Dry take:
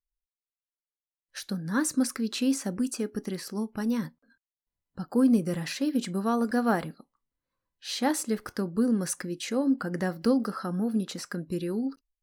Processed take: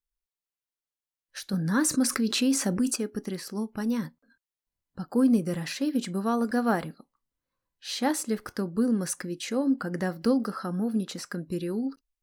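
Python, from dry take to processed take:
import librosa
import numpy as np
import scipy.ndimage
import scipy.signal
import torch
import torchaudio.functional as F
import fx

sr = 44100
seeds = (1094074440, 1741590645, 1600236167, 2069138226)

y = fx.env_flatten(x, sr, amount_pct=50, at=(1.53, 2.96))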